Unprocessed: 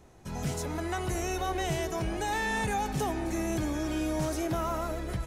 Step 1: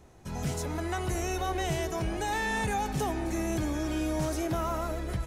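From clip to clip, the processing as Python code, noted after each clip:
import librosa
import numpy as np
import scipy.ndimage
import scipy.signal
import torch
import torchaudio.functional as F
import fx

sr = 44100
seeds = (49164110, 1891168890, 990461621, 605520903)

y = fx.peak_eq(x, sr, hz=74.0, db=2.5, octaves=0.77)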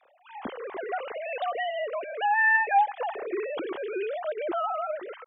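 y = fx.sine_speech(x, sr)
y = y * 10.0 ** (2.0 / 20.0)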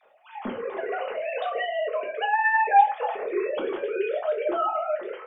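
y = fx.room_shoebox(x, sr, seeds[0], volume_m3=140.0, walls='furnished', distance_m=1.4)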